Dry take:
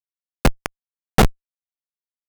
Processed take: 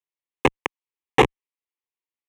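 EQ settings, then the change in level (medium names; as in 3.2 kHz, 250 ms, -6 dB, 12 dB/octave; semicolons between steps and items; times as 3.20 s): band-pass 160–4800 Hz; static phaser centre 960 Hz, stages 8; +4.5 dB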